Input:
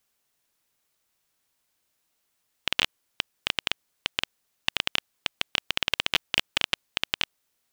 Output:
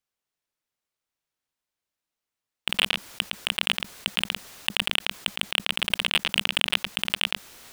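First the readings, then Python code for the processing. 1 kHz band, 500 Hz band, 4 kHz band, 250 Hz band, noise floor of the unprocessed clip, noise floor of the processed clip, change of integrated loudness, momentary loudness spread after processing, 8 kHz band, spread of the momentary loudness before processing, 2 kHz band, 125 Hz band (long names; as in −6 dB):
+2.0 dB, +2.0 dB, +3.5 dB, +4.5 dB, −76 dBFS, below −85 dBFS, +3.5 dB, 6 LU, +4.5 dB, 7 LU, +3.0 dB, +4.0 dB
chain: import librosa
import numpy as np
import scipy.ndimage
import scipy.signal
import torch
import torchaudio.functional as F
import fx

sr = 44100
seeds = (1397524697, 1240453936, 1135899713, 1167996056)

p1 = fx.rider(x, sr, range_db=10, speed_s=0.5)
p2 = x + (p1 * 10.0 ** (0.5 / 20.0))
p3 = fx.high_shelf(p2, sr, hz=7000.0, db=-7.0)
p4 = p3 + fx.echo_single(p3, sr, ms=112, db=-10.5, dry=0)
p5 = fx.leveller(p4, sr, passes=3)
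p6 = fx.peak_eq(p5, sr, hz=200.0, db=-2.0, octaves=0.23)
p7 = fx.sustainer(p6, sr, db_per_s=53.0)
y = p7 * 10.0 ** (-9.5 / 20.0)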